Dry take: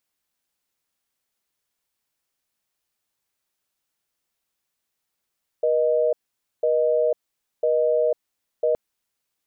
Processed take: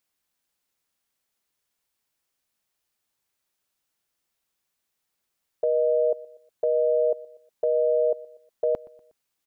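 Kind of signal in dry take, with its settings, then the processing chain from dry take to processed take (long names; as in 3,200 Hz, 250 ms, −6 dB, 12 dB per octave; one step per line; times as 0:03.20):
call progress tone busy tone, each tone −20 dBFS
dynamic equaliser 560 Hz, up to −3 dB, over −30 dBFS
repeating echo 121 ms, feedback 45%, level −22 dB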